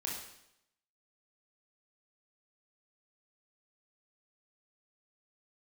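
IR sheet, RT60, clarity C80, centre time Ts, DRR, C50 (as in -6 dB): 0.80 s, 6.0 dB, 49 ms, -3.0 dB, 2.5 dB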